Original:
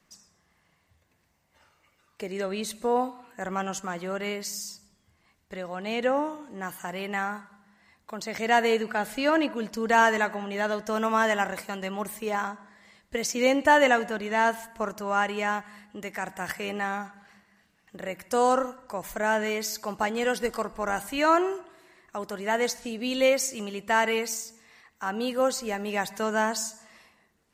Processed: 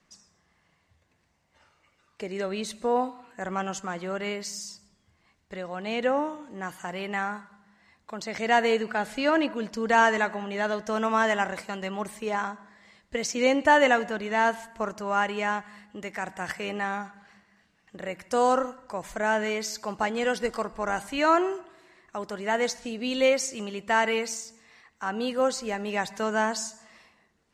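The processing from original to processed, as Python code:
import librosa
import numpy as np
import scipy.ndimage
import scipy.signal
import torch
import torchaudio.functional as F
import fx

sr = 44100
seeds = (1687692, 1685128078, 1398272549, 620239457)

y = scipy.signal.sosfilt(scipy.signal.butter(2, 7900.0, 'lowpass', fs=sr, output='sos'), x)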